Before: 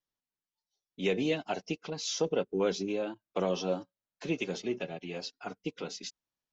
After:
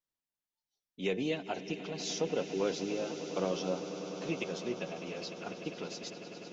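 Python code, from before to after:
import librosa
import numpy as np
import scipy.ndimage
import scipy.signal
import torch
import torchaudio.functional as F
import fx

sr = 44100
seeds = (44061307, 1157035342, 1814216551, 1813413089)

y = fx.echo_swell(x, sr, ms=100, loudest=8, wet_db=-16)
y = y * librosa.db_to_amplitude(-3.5)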